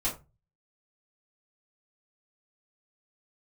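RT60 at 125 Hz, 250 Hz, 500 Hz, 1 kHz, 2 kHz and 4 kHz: 0.60 s, 0.30 s, 0.25 s, 0.25 s, 0.20 s, 0.15 s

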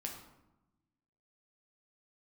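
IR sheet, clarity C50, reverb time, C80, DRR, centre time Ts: 5.5 dB, 0.95 s, 8.0 dB, 0.0 dB, 31 ms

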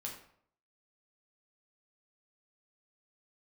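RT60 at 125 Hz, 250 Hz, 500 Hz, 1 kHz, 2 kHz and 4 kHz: 0.70 s, 0.65 s, 0.65 s, 0.60 s, 0.50 s, 0.45 s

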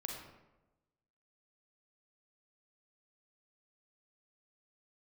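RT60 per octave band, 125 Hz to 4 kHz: 1.3 s, 1.1 s, 1.1 s, 0.95 s, 0.80 s, 0.60 s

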